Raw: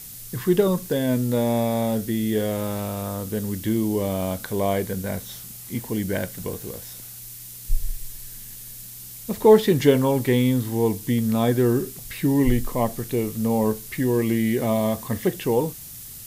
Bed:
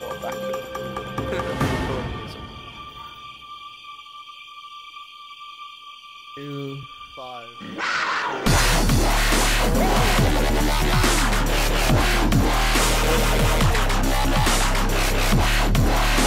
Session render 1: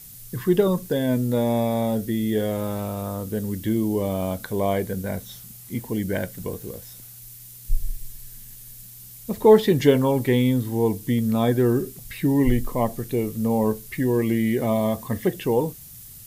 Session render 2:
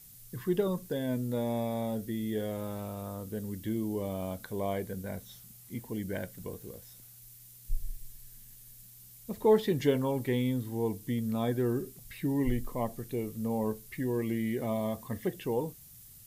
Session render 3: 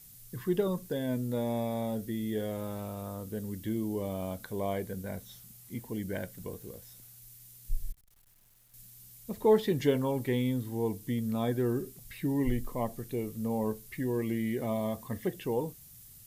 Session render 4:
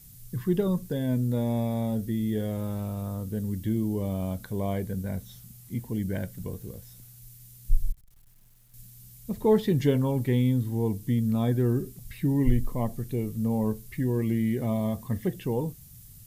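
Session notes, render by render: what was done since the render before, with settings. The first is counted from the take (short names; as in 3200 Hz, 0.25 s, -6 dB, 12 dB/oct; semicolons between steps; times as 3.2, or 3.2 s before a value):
denoiser 6 dB, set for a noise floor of -40 dBFS
gain -10 dB
7.92–8.74 tube stage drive 61 dB, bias 0.7
tone controls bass +10 dB, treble +1 dB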